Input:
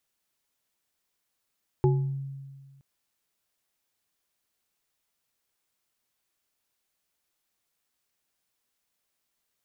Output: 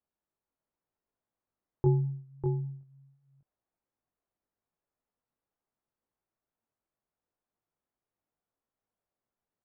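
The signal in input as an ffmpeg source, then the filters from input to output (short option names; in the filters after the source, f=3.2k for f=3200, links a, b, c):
-f lavfi -i "aevalsrc='0.119*pow(10,-3*t/1.66)*sin(2*PI*137*t)+0.112*pow(10,-3*t/0.41)*sin(2*PI*371*t)+0.0355*pow(10,-3*t/0.37)*sin(2*PI*844*t)':d=0.97:s=44100"
-filter_complex "[0:a]lowpass=1k,flanger=delay=17.5:depth=4.2:speed=0.82,asplit=2[a][b];[b]aecho=0:1:597:0.562[c];[a][c]amix=inputs=2:normalize=0"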